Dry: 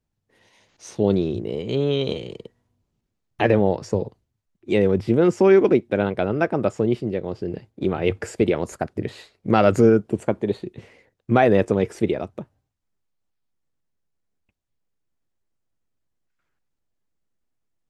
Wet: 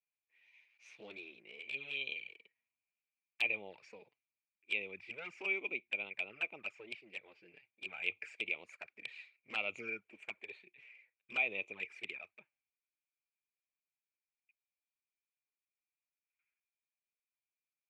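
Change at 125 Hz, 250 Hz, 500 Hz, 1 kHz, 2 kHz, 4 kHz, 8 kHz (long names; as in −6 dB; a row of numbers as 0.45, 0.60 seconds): below −40 dB, −36.0 dB, −31.5 dB, −27.0 dB, −5.5 dB, −9.5 dB, can't be measured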